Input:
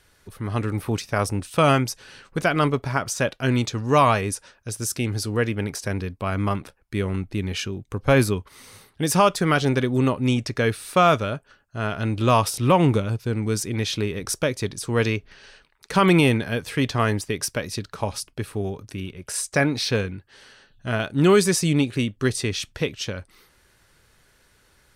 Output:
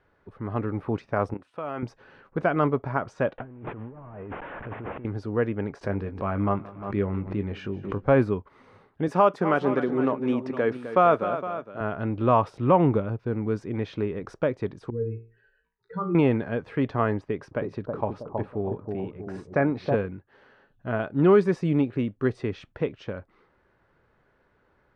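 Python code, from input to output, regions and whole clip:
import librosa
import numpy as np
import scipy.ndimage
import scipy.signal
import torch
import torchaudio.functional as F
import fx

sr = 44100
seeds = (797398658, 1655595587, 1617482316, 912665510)

y = fx.chain(x, sr, fx.highpass(hz=340.0, slope=6),
    fx.peak_eq(hz=11000.0, db=7.0, octaves=0.7),
    fx.level_steps(step_db=15), at=(1.34, 1.83))
y = fx.chain(y, sr, fx.delta_mod(bps=16000, step_db=-36.0),
    fx.over_compress(threshold_db=-35.0, ratio=-1.0), at=(3.38, 5.05))
y = fx.chain(y, sr, fx.doubler(ms=20.0, db=-8.5),
    fx.echo_feedback(ms=176, feedback_pct=53, wet_db=-20.0),
    fx.pre_swell(db_per_s=80.0), at=(5.81, 8.06))
y = fx.chain(y, sr, fx.highpass(hz=200.0, slope=12),
    fx.high_shelf(hz=9500.0, db=10.5),
    fx.echo_multitap(ms=(257, 462), db=(-11.5, -13.5)), at=(9.08, 11.81))
y = fx.chain(y, sr, fx.spec_expand(power=2.8),
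    fx.comb_fb(f0_hz=57.0, decay_s=0.39, harmonics='all', damping=0.0, mix_pct=90), at=(14.9, 16.15))
y = fx.chain(y, sr, fx.high_shelf(hz=5600.0, db=-7.0),
    fx.echo_bbd(ms=321, stages=2048, feedback_pct=42, wet_db=-3), at=(17.19, 19.95))
y = scipy.signal.sosfilt(scipy.signal.butter(2, 1200.0, 'lowpass', fs=sr, output='sos'), y)
y = fx.low_shelf(y, sr, hz=120.0, db=-10.5)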